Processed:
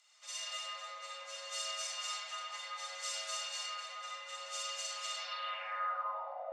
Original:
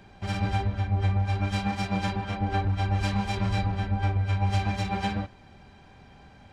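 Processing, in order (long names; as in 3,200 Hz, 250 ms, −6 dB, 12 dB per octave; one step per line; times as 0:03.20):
comb and all-pass reverb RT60 3.1 s, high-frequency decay 0.3×, pre-delay 10 ms, DRR −7 dB
band-pass filter sweep 6,800 Hz → 250 Hz, 0:05.18–0:06.44
frequency shifter +450 Hz
level +4 dB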